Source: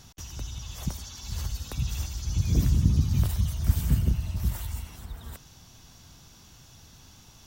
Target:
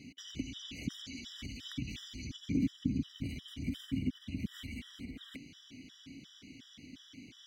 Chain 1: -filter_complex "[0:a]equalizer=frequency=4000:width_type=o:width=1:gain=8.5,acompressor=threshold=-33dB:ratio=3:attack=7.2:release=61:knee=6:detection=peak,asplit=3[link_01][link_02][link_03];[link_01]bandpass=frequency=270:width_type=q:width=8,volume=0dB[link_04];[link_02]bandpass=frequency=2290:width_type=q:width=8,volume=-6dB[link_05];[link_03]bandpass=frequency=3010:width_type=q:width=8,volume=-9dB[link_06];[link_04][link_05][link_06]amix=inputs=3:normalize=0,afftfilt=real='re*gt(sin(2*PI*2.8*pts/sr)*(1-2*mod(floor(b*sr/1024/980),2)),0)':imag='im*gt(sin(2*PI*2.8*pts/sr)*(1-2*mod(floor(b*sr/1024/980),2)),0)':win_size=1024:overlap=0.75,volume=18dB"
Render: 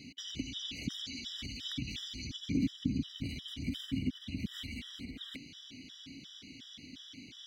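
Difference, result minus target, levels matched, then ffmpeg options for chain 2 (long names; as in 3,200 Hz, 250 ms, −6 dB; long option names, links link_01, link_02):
4,000 Hz band +6.0 dB
-filter_complex "[0:a]acompressor=threshold=-33dB:ratio=3:attack=7.2:release=61:knee=6:detection=peak,asplit=3[link_01][link_02][link_03];[link_01]bandpass=frequency=270:width_type=q:width=8,volume=0dB[link_04];[link_02]bandpass=frequency=2290:width_type=q:width=8,volume=-6dB[link_05];[link_03]bandpass=frequency=3010:width_type=q:width=8,volume=-9dB[link_06];[link_04][link_05][link_06]amix=inputs=3:normalize=0,afftfilt=real='re*gt(sin(2*PI*2.8*pts/sr)*(1-2*mod(floor(b*sr/1024/980),2)),0)':imag='im*gt(sin(2*PI*2.8*pts/sr)*(1-2*mod(floor(b*sr/1024/980),2)),0)':win_size=1024:overlap=0.75,volume=18dB"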